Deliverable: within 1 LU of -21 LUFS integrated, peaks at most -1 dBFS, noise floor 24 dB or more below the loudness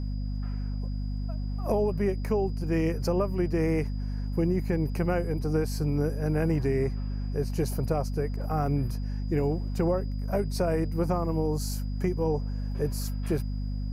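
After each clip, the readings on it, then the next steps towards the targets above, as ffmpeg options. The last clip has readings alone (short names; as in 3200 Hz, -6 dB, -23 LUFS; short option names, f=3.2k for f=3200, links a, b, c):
hum 50 Hz; harmonics up to 250 Hz; hum level -28 dBFS; steady tone 4900 Hz; tone level -56 dBFS; loudness -29.0 LUFS; peak -13.5 dBFS; loudness target -21.0 LUFS
-> -af "bandreject=f=50:t=h:w=6,bandreject=f=100:t=h:w=6,bandreject=f=150:t=h:w=6,bandreject=f=200:t=h:w=6,bandreject=f=250:t=h:w=6"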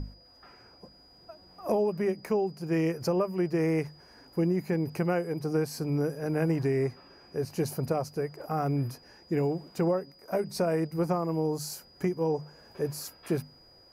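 hum none; steady tone 4900 Hz; tone level -56 dBFS
-> -af "bandreject=f=4.9k:w=30"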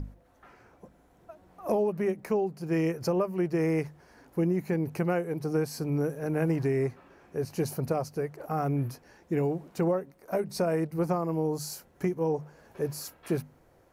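steady tone none; loudness -30.5 LUFS; peak -14.0 dBFS; loudness target -21.0 LUFS
-> -af "volume=9.5dB"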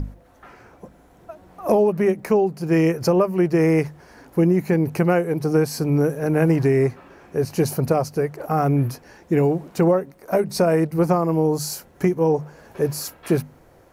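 loudness -21.0 LUFS; peak -4.5 dBFS; noise floor -52 dBFS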